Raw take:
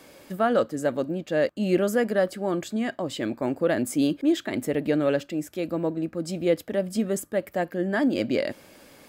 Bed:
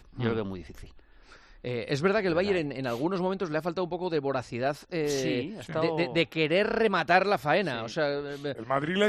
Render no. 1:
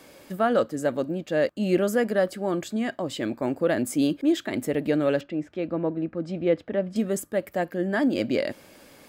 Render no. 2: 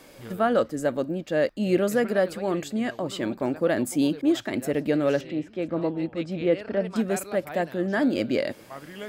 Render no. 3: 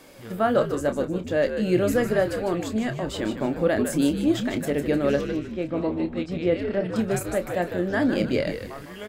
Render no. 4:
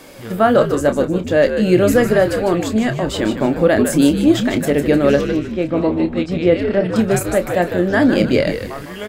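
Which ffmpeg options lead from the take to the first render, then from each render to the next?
-filter_complex "[0:a]asettb=1/sr,asplit=3[a][b][c];[a]atrim=end=5.214[d];[b]atrim=start=5.21:end=6.96,asetpts=PTS-STARTPTS,afade=t=in:d=0.004:c=qsin,afade=t=out:st=1.746:d=0.004:c=qsin,lowpass=2.7k[e];[c]atrim=start=6.956[f];[d][e]acrossfade=d=0.004:c1=hsin:c2=qsin[g];[g][f]acrossfade=d=0.004:c1=qsin:c2=hsin"
-filter_complex "[1:a]volume=-13.5dB[a];[0:a][a]amix=inputs=2:normalize=0"
-filter_complex "[0:a]asplit=2[a][b];[b]adelay=28,volume=-10dB[c];[a][c]amix=inputs=2:normalize=0,asplit=5[d][e][f][g][h];[e]adelay=153,afreqshift=-83,volume=-8dB[i];[f]adelay=306,afreqshift=-166,volume=-16.9dB[j];[g]adelay=459,afreqshift=-249,volume=-25.7dB[k];[h]adelay=612,afreqshift=-332,volume=-34.6dB[l];[d][i][j][k][l]amix=inputs=5:normalize=0"
-af "volume=9dB,alimiter=limit=-2dB:level=0:latency=1"

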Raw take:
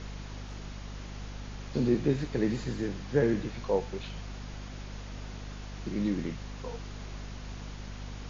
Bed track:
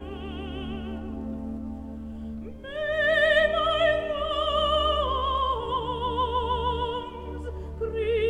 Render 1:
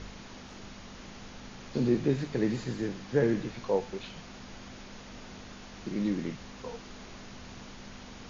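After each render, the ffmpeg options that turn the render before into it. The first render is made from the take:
-af "bandreject=f=50:t=h:w=4,bandreject=f=100:t=h:w=4,bandreject=f=150:t=h:w=4"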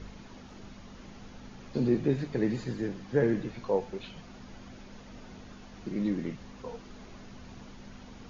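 -af "afftdn=nr=7:nf=-47"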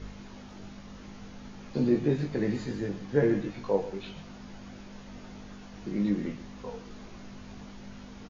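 -filter_complex "[0:a]asplit=2[a][b];[b]adelay=20,volume=-5dB[c];[a][c]amix=inputs=2:normalize=0,aecho=1:1:130:0.178"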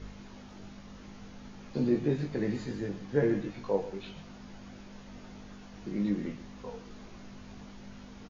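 -af "volume=-2.5dB"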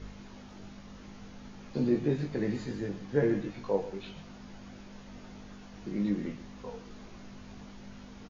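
-af anull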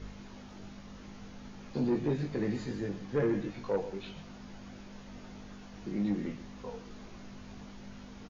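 -af "asoftclip=type=tanh:threshold=-22dB"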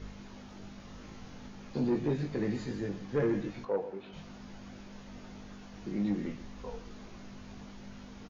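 -filter_complex "[0:a]asettb=1/sr,asplit=3[a][b][c];[a]atrim=end=0.764[d];[b]atrim=start=0.76:end=1.47,asetpts=PTS-STARTPTS,afade=t=in:d=0.004:c=qsin,afade=t=out:st=0.706:d=0.004:c=qsin,asplit=2[e][f];[f]adelay=37,volume=-5dB[g];[e][g]amix=inputs=2:normalize=0,atrim=end_sample=31311[h];[c]atrim=start=1.466[i];[d][h]acrossfade=d=0.004:c1=hsin:c2=qsin[j];[j][i]acrossfade=d=0.004:c1=qsin:c2=hsin,asplit=3[k][l][m];[k]afade=t=out:st=3.64:d=0.02[n];[l]bandpass=f=610:t=q:w=0.51,afade=t=in:st=3.64:d=0.02,afade=t=out:st=4.12:d=0.02[o];[m]afade=t=in:st=4.12:d=0.02[p];[n][o][p]amix=inputs=3:normalize=0,asettb=1/sr,asplit=3[q][r][s];[q]atrim=end=6.174[t];[r]atrim=start=6.17:end=6.88,asetpts=PTS-STARTPTS,afade=t=in:d=0.004:c=qsin,afade=t=out:st=0.706:d=0.004:c=qsin,asubboost=boost=11:cutoff=77[u];[s]atrim=start=6.876[v];[t][u]acrossfade=d=0.004:c1=hsin:c2=qsin[w];[w][v]acrossfade=d=0.004:c1=qsin:c2=hsin"

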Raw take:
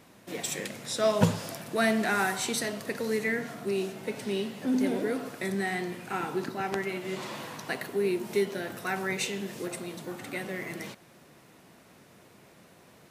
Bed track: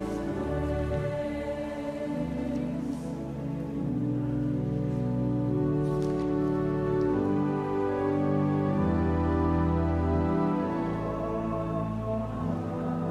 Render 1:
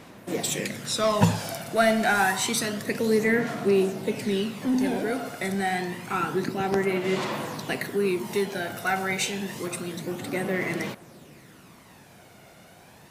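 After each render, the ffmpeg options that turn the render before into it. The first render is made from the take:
-filter_complex "[0:a]asplit=2[a][b];[b]asoftclip=type=tanh:threshold=-23.5dB,volume=-3dB[c];[a][c]amix=inputs=2:normalize=0,aphaser=in_gain=1:out_gain=1:delay=1.4:decay=0.43:speed=0.28:type=sinusoidal"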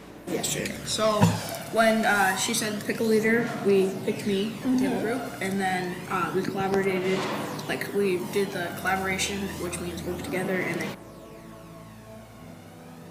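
-filter_complex "[1:a]volume=-15dB[a];[0:a][a]amix=inputs=2:normalize=0"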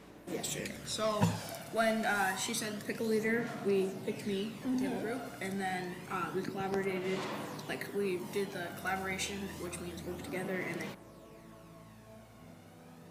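-af "volume=-9.5dB"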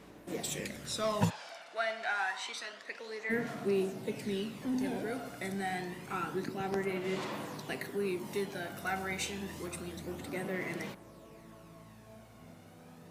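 -filter_complex "[0:a]asplit=3[a][b][c];[a]afade=t=out:st=1.29:d=0.02[d];[b]highpass=790,lowpass=4.4k,afade=t=in:st=1.29:d=0.02,afade=t=out:st=3.29:d=0.02[e];[c]afade=t=in:st=3.29:d=0.02[f];[d][e][f]amix=inputs=3:normalize=0"

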